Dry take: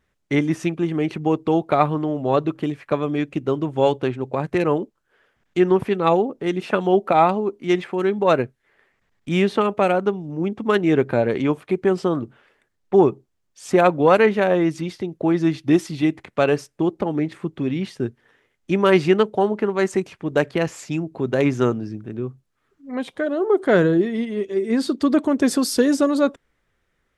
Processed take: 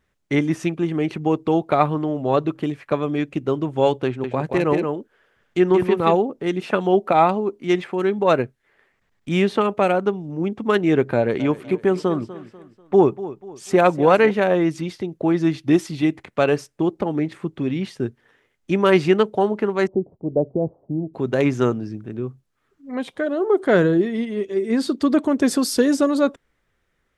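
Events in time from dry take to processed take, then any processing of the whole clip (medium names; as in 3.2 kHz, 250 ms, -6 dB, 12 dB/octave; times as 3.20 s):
4.06–6.15 s: delay 177 ms -5 dB
11.15–14.31 s: feedback delay 245 ms, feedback 39%, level -15.5 dB
19.87–21.14 s: steep low-pass 720 Hz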